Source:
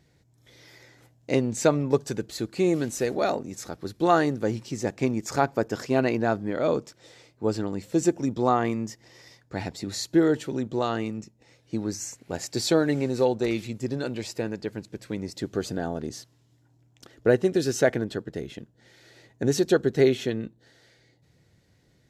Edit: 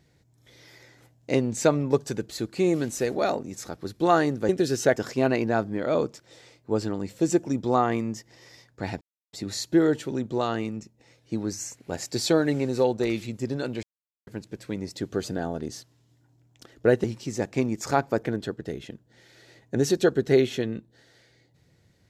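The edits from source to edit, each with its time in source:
0:04.49–0:05.69: swap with 0:17.45–0:17.92
0:09.74: splice in silence 0.32 s
0:14.24–0:14.68: silence

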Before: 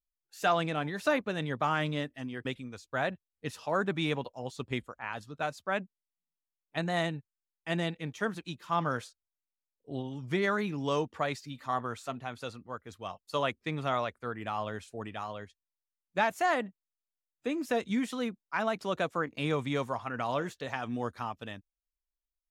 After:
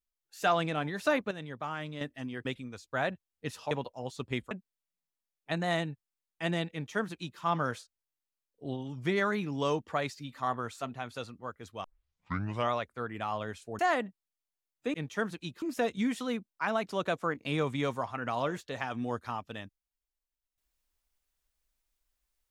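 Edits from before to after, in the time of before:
0:01.31–0:02.01: clip gain −8 dB
0:03.71–0:04.11: remove
0:04.91–0:05.77: remove
0:07.98–0:08.66: duplicate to 0:17.54
0:13.10: tape start 0.88 s
0:15.05–0:16.39: remove

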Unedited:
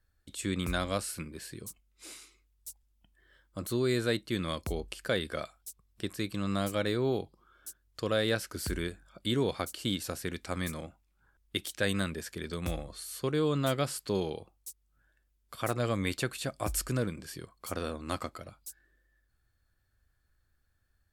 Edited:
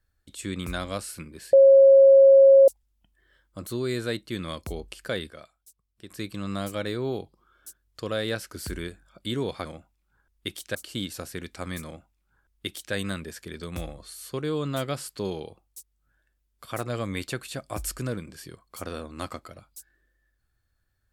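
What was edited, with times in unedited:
0:01.53–0:02.68: beep over 544 Hz −10 dBFS
0:05.30–0:06.10: clip gain −9.5 dB
0:10.74–0:11.84: duplicate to 0:09.65

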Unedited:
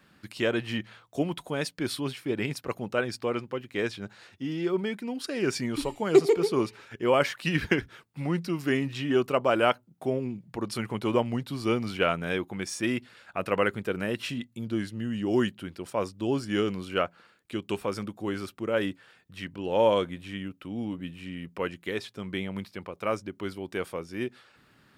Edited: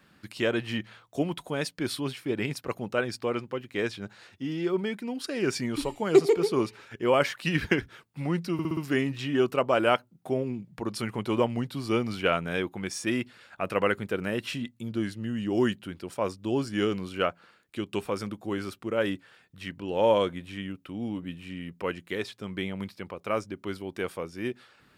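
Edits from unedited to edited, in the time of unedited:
0:08.53: stutter 0.06 s, 5 plays

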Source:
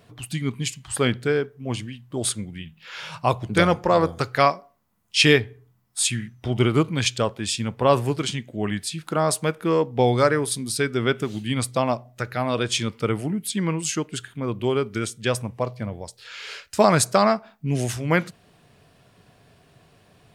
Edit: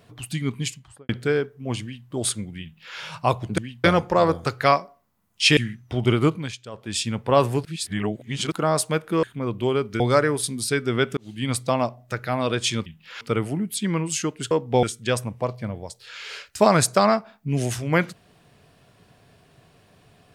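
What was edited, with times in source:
0:00.62–0:01.09: fade out and dull
0:01.82–0:02.08: duplicate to 0:03.58
0:02.63–0:02.98: duplicate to 0:12.94
0:05.31–0:06.10: remove
0:06.82–0:07.50: duck −16 dB, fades 0.26 s
0:08.18–0:09.05: reverse
0:09.76–0:10.08: swap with 0:14.24–0:15.01
0:11.25–0:11.58: fade in

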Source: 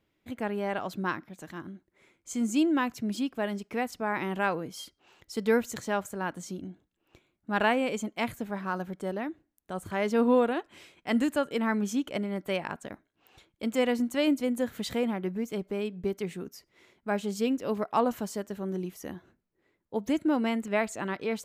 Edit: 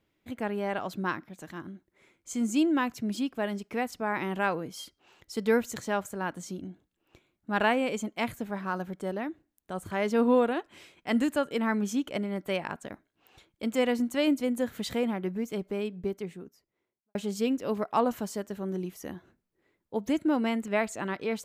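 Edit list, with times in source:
0:15.73–0:17.15: fade out and dull

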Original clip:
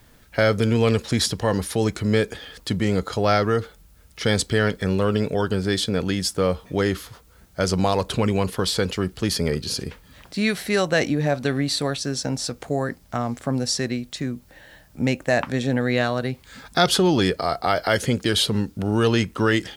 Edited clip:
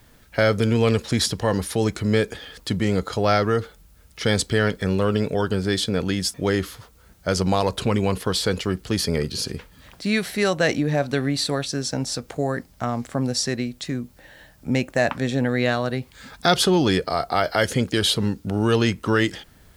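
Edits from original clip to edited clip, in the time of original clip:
0:06.34–0:06.66: remove

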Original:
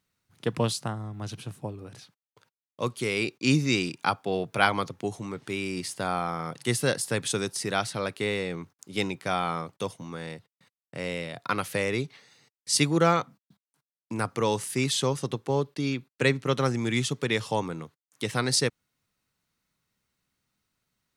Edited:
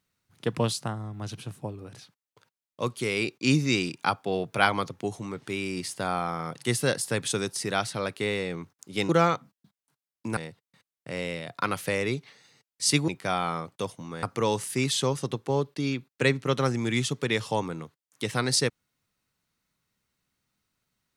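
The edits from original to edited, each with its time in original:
0:09.09–0:10.24: swap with 0:12.95–0:14.23

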